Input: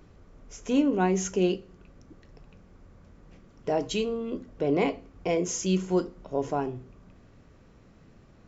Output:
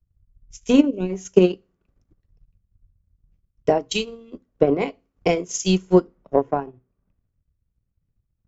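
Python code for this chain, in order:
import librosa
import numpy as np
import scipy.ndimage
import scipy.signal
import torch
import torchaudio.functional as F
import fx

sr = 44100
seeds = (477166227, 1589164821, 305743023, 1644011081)

y = fx.transient(x, sr, attack_db=11, sustain_db=-10)
y = fx.spec_box(y, sr, start_s=0.86, length_s=0.24, low_hz=680.0, high_hz=2200.0, gain_db=-17)
y = fx.band_widen(y, sr, depth_pct=100)
y = y * 10.0 ** (-1.5 / 20.0)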